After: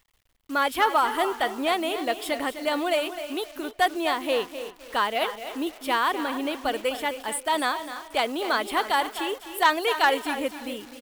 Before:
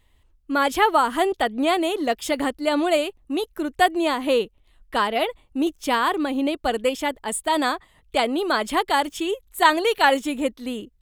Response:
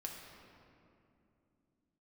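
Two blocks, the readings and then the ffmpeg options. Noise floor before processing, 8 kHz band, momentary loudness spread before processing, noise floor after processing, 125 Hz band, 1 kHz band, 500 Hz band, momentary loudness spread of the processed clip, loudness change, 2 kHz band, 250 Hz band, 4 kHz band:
-61 dBFS, -3.0 dB, 9 LU, -54 dBFS, n/a, -2.5 dB, -4.5 dB, 10 LU, -3.5 dB, -2.0 dB, -7.0 dB, -2.0 dB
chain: -filter_complex "[0:a]equalizer=f=6.4k:w=2.5:g=-13,asoftclip=type=tanh:threshold=-9dB,asplit=2[a][b];[b]aecho=0:1:255|510|765:0.266|0.0612|0.0141[c];[a][c]amix=inputs=2:normalize=0,acrusher=bits=8:dc=4:mix=0:aa=0.000001,lowshelf=f=460:g=-10,asplit=2[d][e];[e]adelay=292,lowpass=f=3.5k:p=1,volume=-16dB,asplit=2[f][g];[g]adelay=292,lowpass=f=3.5k:p=1,volume=0.28,asplit=2[h][i];[i]adelay=292,lowpass=f=3.5k:p=1,volume=0.28[j];[f][h][j]amix=inputs=3:normalize=0[k];[d][k]amix=inputs=2:normalize=0"

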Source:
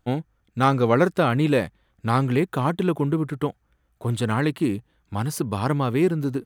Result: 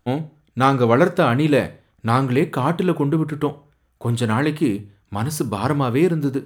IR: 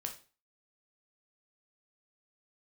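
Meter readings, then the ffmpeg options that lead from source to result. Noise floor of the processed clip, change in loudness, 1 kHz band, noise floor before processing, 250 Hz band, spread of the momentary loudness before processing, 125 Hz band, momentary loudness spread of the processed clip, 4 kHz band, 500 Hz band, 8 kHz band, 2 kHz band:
-63 dBFS, +3.0 dB, +3.5 dB, -68 dBFS, +3.5 dB, 11 LU, +2.5 dB, 12 LU, +3.5 dB, +3.5 dB, +3.5 dB, +3.5 dB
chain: -filter_complex "[0:a]bandreject=f=50:t=h:w=6,bandreject=f=100:t=h:w=6,bandreject=f=150:t=h:w=6,asplit=2[a][b];[1:a]atrim=start_sample=2205[c];[b][c]afir=irnorm=-1:irlink=0,volume=-4dB[d];[a][d]amix=inputs=2:normalize=0"

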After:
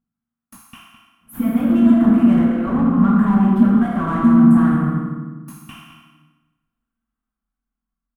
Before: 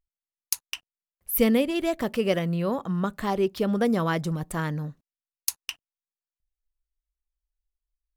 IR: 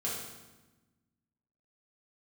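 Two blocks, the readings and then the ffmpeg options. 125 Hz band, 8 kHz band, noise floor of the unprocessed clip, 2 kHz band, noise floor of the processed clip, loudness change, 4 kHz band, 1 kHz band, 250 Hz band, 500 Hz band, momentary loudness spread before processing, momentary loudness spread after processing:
+9.5 dB, under -10 dB, under -85 dBFS, +1.5 dB, -85 dBFS, +11.5 dB, n/a, +7.0 dB, +14.5 dB, -3.0 dB, 15 LU, 12 LU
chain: -filter_complex "[0:a]alimiter=limit=-12.5dB:level=0:latency=1:release=446[a];[1:a]atrim=start_sample=2205[b];[a][b]afir=irnorm=-1:irlink=0,dynaudnorm=f=420:g=9:m=11.5dB,equalizer=f=7.5k:w=0.49:g=-4.5,afftfilt=real='re*lt(hypot(re,im),1)':imag='im*lt(hypot(re,im),1)':win_size=1024:overlap=0.75,asplit=2[c][d];[d]highpass=f=720:p=1,volume=24dB,asoftclip=type=tanh:threshold=-8dB[e];[c][e]amix=inputs=2:normalize=0,lowpass=f=3k:p=1,volume=-6dB,firequalizer=gain_entry='entry(100,0);entry(230,13);entry(430,-19);entry(820,-10);entry(1300,-7);entry(2100,-19);entry(3100,-21);entry(4700,-30);entry(8600,-14)':delay=0.05:min_phase=1,asplit=2[f][g];[g]adelay=209.9,volume=-11dB,highshelf=f=4k:g=-4.72[h];[f][h]amix=inputs=2:normalize=0"

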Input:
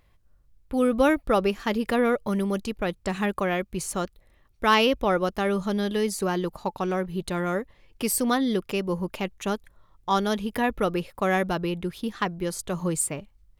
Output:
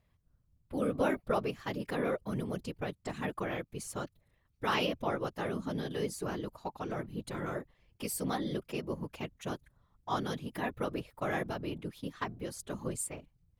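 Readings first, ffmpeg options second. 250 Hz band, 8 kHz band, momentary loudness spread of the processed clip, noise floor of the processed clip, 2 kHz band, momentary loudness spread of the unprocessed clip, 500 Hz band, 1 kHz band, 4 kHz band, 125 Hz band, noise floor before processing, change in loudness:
-11.0 dB, -11.0 dB, 10 LU, -74 dBFS, -10.5 dB, 9 LU, -10.5 dB, -10.5 dB, -10.5 dB, -7.5 dB, -62 dBFS, -10.5 dB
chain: -af "afftfilt=real='hypot(re,im)*cos(2*PI*random(0))':imag='hypot(re,im)*sin(2*PI*random(1))':win_size=512:overlap=0.75,volume=-4.5dB"

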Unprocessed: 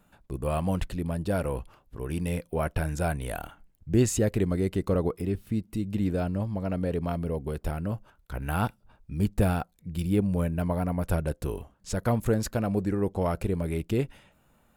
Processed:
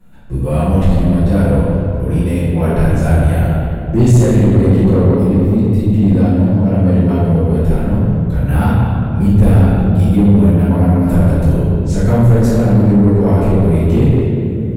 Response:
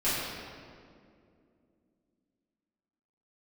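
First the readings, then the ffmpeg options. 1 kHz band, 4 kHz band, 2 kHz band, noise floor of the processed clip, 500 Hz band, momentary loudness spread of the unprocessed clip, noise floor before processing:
+11.0 dB, n/a, +10.0 dB, -18 dBFS, +13.0 dB, 11 LU, -66 dBFS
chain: -filter_complex "[0:a]bandreject=f=1.2k:w=22[a];[1:a]atrim=start_sample=2205,asetrate=34839,aresample=44100[b];[a][b]afir=irnorm=-1:irlink=0,asoftclip=type=tanh:threshold=-8.5dB,lowshelf=f=250:g=9.5,volume=-1.5dB"

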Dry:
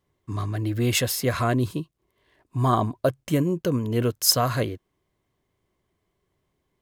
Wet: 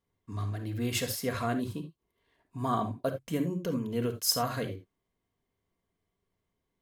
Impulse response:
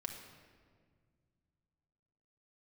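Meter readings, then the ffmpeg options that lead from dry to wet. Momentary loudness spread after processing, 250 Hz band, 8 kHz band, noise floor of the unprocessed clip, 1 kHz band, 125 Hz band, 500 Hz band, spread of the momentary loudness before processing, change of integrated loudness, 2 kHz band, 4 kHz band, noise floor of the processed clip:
13 LU, -7.0 dB, -8.0 dB, -76 dBFS, -7.0 dB, -10.0 dB, -8.0 dB, 13 LU, -8.0 dB, -8.0 dB, -8.0 dB, -83 dBFS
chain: -filter_complex "[1:a]atrim=start_sample=2205,atrim=end_sample=3969[a];[0:a][a]afir=irnorm=-1:irlink=0,volume=-5.5dB"

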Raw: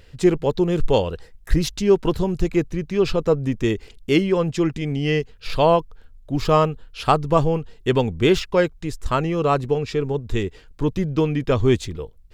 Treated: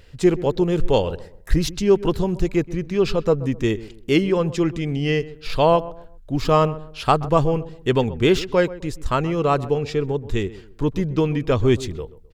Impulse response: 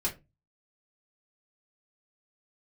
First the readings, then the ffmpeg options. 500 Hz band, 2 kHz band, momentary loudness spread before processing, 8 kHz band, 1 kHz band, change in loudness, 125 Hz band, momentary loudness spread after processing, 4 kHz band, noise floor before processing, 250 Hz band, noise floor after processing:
0.0 dB, 0.0 dB, 8 LU, 0.0 dB, 0.0 dB, 0.0 dB, 0.0 dB, 8 LU, 0.0 dB, -48 dBFS, 0.0 dB, -45 dBFS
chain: -filter_complex "[0:a]asplit=2[a][b];[b]adelay=129,lowpass=f=1.2k:p=1,volume=-16dB,asplit=2[c][d];[d]adelay=129,lowpass=f=1.2k:p=1,volume=0.33,asplit=2[e][f];[f]adelay=129,lowpass=f=1.2k:p=1,volume=0.33[g];[a][c][e][g]amix=inputs=4:normalize=0"

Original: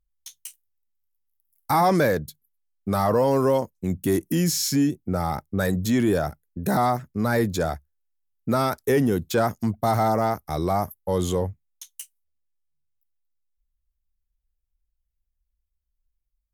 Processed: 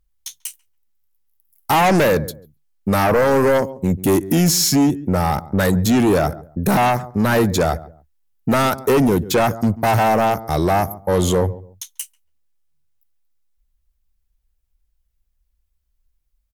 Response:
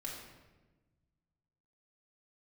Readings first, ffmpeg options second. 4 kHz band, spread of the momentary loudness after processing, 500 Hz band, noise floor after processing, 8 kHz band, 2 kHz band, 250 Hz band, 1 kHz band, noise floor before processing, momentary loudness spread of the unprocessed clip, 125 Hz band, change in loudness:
+8.5 dB, 16 LU, +6.0 dB, -69 dBFS, +8.0 dB, +8.5 dB, +6.0 dB, +6.0 dB, -79 dBFS, 17 LU, +6.0 dB, +6.0 dB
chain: -filter_complex "[0:a]asplit=2[a][b];[b]adelay=140,lowpass=f=830:p=1,volume=-18dB,asplit=2[c][d];[d]adelay=140,lowpass=f=830:p=1,volume=0.27[e];[a][c][e]amix=inputs=3:normalize=0,aeval=exprs='0.335*sin(PI/2*2.24*val(0)/0.335)':c=same,volume=-1.5dB"

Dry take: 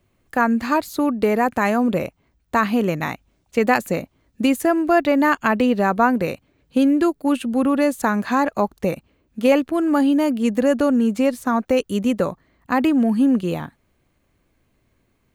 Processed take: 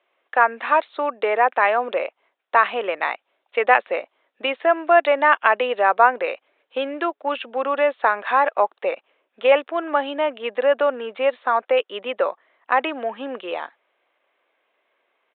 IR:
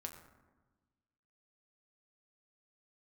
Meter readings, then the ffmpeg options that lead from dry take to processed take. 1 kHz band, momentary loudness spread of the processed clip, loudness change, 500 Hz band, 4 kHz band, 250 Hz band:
+3.5 dB, 12 LU, -1.0 dB, +1.0 dB, +2.0 dB, -17.5 dB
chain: -af "highpass=f=510:w=0.5412,highpass=f=510:w=1.3066,aresample=8000,aresample=44100,volume=3.5dB"

